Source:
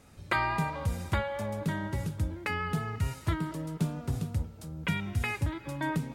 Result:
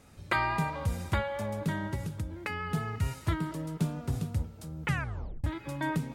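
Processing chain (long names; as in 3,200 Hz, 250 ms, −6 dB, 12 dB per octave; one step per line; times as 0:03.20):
0:01.94–0:02.74: downward compressor, threshold −31 dBFS, peak gain reduction 7 dB
0:04.82: tape stop 0.62 s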